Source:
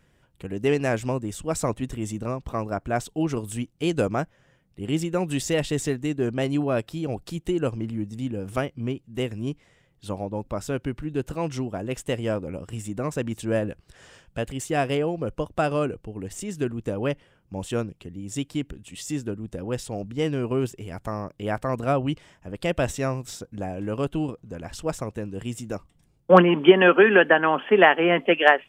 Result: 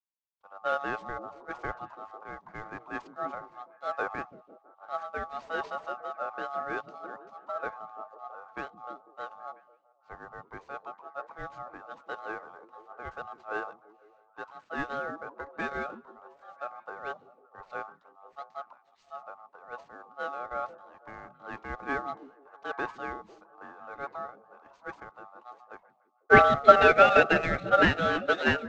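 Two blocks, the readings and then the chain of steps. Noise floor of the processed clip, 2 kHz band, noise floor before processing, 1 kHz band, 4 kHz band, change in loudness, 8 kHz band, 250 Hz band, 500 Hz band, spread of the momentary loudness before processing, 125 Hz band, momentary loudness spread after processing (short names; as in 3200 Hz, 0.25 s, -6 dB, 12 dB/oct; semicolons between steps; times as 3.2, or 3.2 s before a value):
-66 dBFS, -3.0 dB, -64 dBFS, -1.0 dB, -8.0 dB, -3.0 dB, under -20 dB, -13.5 dB, -7.0 dB, 17 LU, -15.0 dB, 23 LU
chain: CVSD 32 kbps; high shelf 2300 Hz -11 dB; ring modulator 980 Hz; on a send: delay with a stepping band-pass 0.166 s, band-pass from 170 Hz, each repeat 0.7 oct, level -2.5 dB; on the sum: three-band expander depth 100%; gain -7.5 dB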